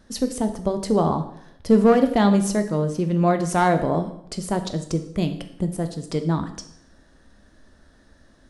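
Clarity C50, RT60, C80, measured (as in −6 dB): 11.0 dB, 0.70 s, 13.5 dB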